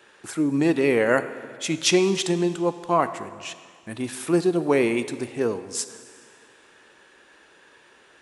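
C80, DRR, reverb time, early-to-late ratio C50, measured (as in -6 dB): 13.5 dB, 11.5 dB, 2.0 s, 13.0 dB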